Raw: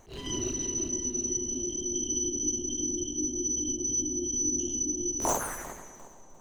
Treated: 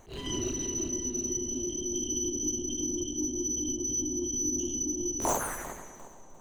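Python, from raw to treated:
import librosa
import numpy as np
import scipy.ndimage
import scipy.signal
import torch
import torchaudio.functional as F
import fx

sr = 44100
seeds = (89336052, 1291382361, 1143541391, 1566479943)

p1 = fx.peak_eq(x, sr, hz=5400.0, db=-7.5, octaves=0.23)
p2 = 10.0 ** (-28.5 / 20.0) * np.tanh(p1 / 10.0 ** (-28.5 / 20.0))
p3 = p1 + (p2 * librosa.db_to_amplitude(-6.5))
y = p3 * librosa.db_to_amplitude(-2.0)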